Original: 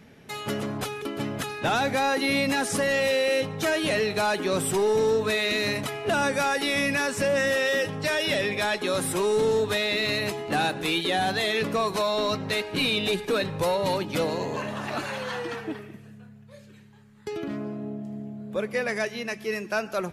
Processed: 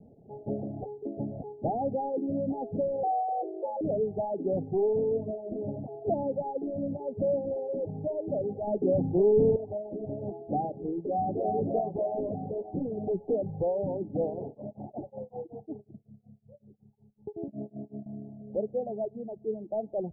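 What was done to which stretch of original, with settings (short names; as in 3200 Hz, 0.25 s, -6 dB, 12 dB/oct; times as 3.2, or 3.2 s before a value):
3.03–3.81 frequency shift +220 Hz
8.67–9.56 low shelf 470 Hz +9 dB
10.98–11.55 echo throw 0.3 s, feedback 65%, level -2 dB
14.46–18.06 beating tremolo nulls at 5.4 Hz
whole clip: steep low-pass 800 Hz 96 dB/oct; reverb removal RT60 1.1 s; gain -1.5 dB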